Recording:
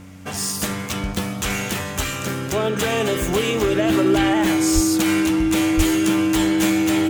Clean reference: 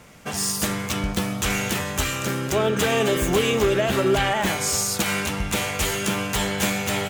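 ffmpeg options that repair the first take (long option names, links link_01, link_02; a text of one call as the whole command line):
ffmpeg -i in.wav -filter_complex "[0:a]bandreject=frequency=93.6:width_type=h:width=4,bandreject=frequency=187.2:width_type=h:width=4,bandreject=frequency=280.8:width_type=h:width=4,bandreject=frequency=320:width=30,asplit=3[link_01][link_02][link_03];[link_01]afade=type=out:start_time=4.74:duration=0.02[link_04];[link_02]highpass=frequency=140:width=0.5412,highpass=frequency=140:width=1.3066,afade=type=in:start_time=4.74:duration=0.02,afade=type=out:start_time=4.86:duration=0.02[link_05];[link_03]afade=type=in:start_time=4.86:duration=0.02[link_06];[link_04][link_05][link_06]amix=inputs=3:normalize=0,asplit=3[link_07][link_08][link_09];[link_07]afade=type=out:start_time=5.76:duration=0.02[link_10];[link_08]highpass=frequency=140:width=0.5412,highpass=frequency=140:width=1.3066,afade=type=in:start_time=5.76:duration=0.02,afade=type=out:start_time=5.88:duration=0.02[link_11];[link_09]afade=type=in:start_time=5.88:duration=0.02[link_12];[link_10][link_11][link_12]amix=inputs=3:normalize=0" out.wav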